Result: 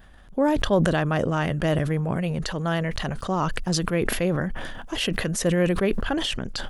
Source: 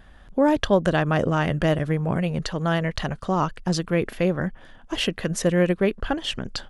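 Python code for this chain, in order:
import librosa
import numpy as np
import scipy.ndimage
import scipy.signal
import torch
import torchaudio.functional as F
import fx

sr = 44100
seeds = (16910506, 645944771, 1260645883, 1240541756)

y = fx.high_shelf(x, sr, hz=10000.0, db=9.5)
y = fx.sustainer(y, sr, db_per_s=27.0)
y = F.gain(torch.from_numpy(y), -2.5).numpy()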